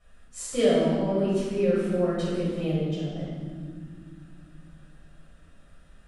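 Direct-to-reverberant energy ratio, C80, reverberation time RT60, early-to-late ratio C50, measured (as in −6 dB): −11.0 dB, 0.5 dB, non-exponential decay, −2.5 dB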